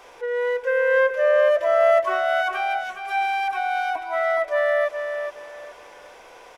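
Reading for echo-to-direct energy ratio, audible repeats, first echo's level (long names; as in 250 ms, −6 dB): −6.5 dB, 3, −7.0 dB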